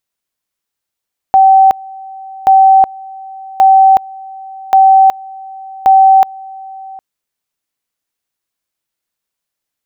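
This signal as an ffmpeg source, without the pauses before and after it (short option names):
-f lavfi -i "aevalsrc='pow(10,(-2.5-23.5*gte(mod(t,1.13),0.37))/20)*sin(2*PI*770*t)':d=5.65:s=44100"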